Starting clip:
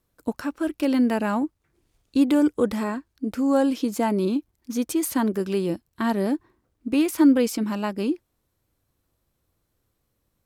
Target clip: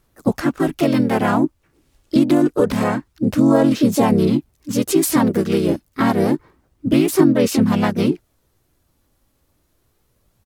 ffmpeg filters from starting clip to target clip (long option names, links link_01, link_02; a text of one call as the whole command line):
ffmpeg -i in.wav -filter_complex "[0:a]asplit=4[link_01][link_02][link_03][link_04];[link_02]asetrate=22050,aresample=44100,atempo=2,volume=-9dB[link_05];[link_03]asetrate=37084,aresample=44100,atempo=1.18921,volume=-4dB[link_06];[link_04]asetrate=52444,aresample=44100,atempo=0.840896,volume=-3dB[link_07];[link_01][link_05][link_06][link_07]amix=inputs=4:normalize=0,acompressor=threshold=-17dB:ratio=12,aphaser=in_gain=1:out_gain=1:delay=3.6:decay=0.23:speed=0.27:type=sinusoidal,volume=6dB" out.wav